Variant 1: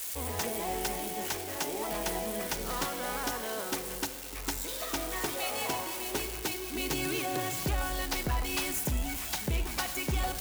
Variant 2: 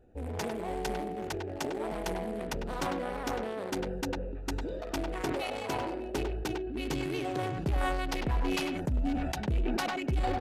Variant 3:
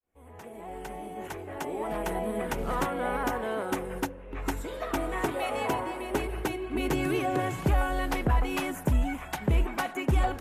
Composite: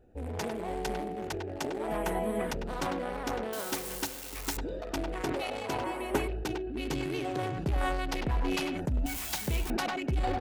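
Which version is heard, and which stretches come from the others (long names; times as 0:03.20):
2
0:01.88–0:02.51: punch in from 3
0:03.53–0:04.57: punch in from 1
0:05.84–0:06.28: punch in from 3
0:09.06–0:09.70: punch in from 1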